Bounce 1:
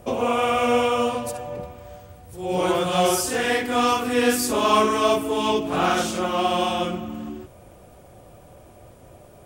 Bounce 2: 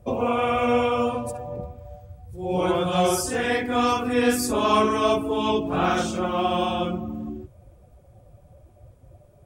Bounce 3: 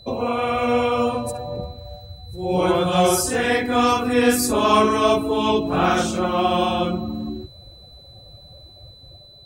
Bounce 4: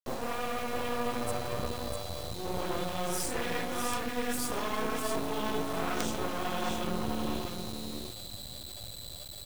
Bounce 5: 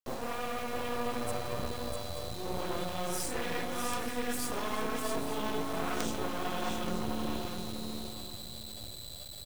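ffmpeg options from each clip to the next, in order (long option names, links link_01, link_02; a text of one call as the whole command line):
ffmpeg -i in.wav -af "afftdn=noise_reduction=12:noise_floor=-36,lowshelf=frequency=150:gain=9,bandreject=frequency=2900:width=21,volume=-2dB" out.wav
ffmpeg -i in.wav -af "highshelf=frequency=9900:gain=4.5,dynaudnorm=framelen=360:gausssize=5:maxgain=4dB,aeval=exprs='val(0)+0.00562*sin(2*PI*4000*n/s)':channel_layout=same" out.wav
ffmpeg -i in.wav -af "areverse,acompressor=threshold=-27dB:ratio=8,areverse,aecho=1:1:650|1300|1950:0.531|0.0849|0.0136,acrusher=bits=4:dc=4:mix=0:aa=0.000001" out.wav
ffmpeg -i in.wav -af "aecho=1:1:877:0.237,volume=-2dB" out.wav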